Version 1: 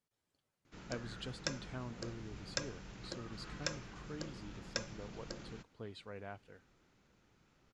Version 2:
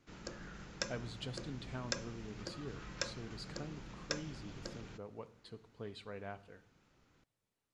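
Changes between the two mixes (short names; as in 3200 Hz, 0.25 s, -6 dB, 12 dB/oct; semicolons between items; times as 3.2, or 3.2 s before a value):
background: entry -0.65 s; reverb: on, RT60 0.80 s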